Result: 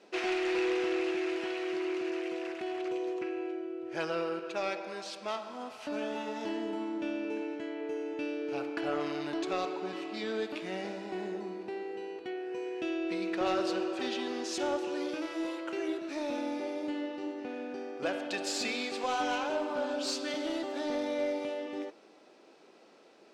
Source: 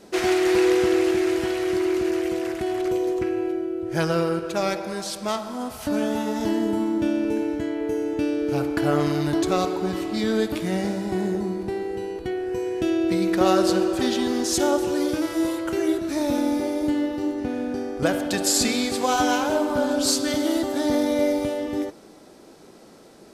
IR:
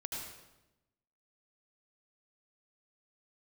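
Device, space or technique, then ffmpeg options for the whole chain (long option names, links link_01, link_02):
intercom: -af "highpass=350,lowpass=4900,equalizer=frequency=2600:width_type=o:width=0.32:gain=7,asoftclip=type=tanh:threshold=-14dB,volume=-8dB"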